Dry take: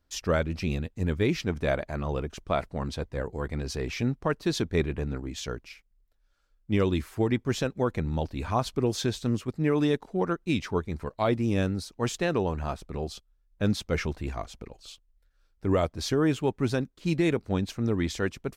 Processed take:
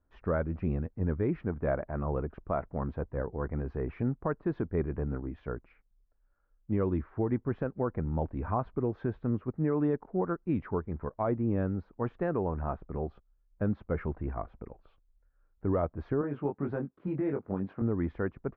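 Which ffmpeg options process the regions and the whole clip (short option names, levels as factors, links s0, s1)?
-filter_complex "[0:a]asettb=1/sr,asplit=3[s0][s1][s2];[s0]atrim=end=16.214[s3];[s1]atrim=start=16.21:end=17.82,asetpts=PTS-STARTPTS,afade=t=in:d=0.004:c=qsin,afade=t=out:st=1.606:d=0.004:c=qsin,highpass=140,acompressor=threshold=0.0398:ratio=3:attack=3.2:release=140:knee=1:detection=peak,asplit=2[s4][s5];[s5]adelay=21,volume=0.668[s6];[s4][s6]amix=inputs=2:normalize=0,atrim=end_sample=71001[s7];[s2]atrim=start=17.816[s8];[s3][s7]acrossfade=d=0.004:c1=hsin:c2=qsin[s9];[s9][s8]acrossfade=d=0.004:c1=qsin:c2=hsin,lowpass=f=1500:w=0.5412,lowpass=f=1500:w=1.3066,alimiter=limit=0.126:level=0:latency=1:release=261,volume=0.841"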